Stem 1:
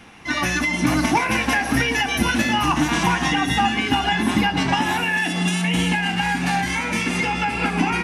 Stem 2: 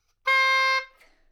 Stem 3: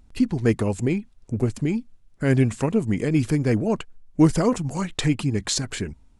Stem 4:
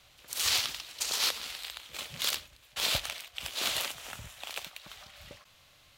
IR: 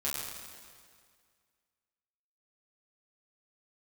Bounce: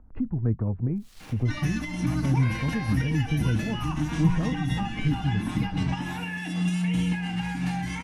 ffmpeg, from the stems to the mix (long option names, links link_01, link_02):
-filter_complex "[0:a]aecho=1:1:6.5:0.41,adelay=1200,volume=-0.5dB[link_01];[1:a]adelay=2150,volume=-1.5dB[link_02];[2:a]lowpass=frequency=1400:width=0.5412,lowpass=frequency=1400:width=1.3066,volume=1dB[link_03];[3:a]agate=range=-33dB:threshold=-47dB:ratio=3:detection=peak,alimiter=limit=-20.5dB:level=0:latency=1:release=24,acrusher=bits=4:dc=4:mix=0:aa=0.000001,adelay=650,volume=-16dB[link_04];[link_01][link_02][link_03][link_04]amix=inputs=4:normalize=0,bandreject=frequency=400:width=12,acrossover=split=180[link_05][link_06];[link_06]acompressor=threshold=-41dB:ratio=2.5[link_07];[link_05][link_07]amix=inputs=2:normalize=0"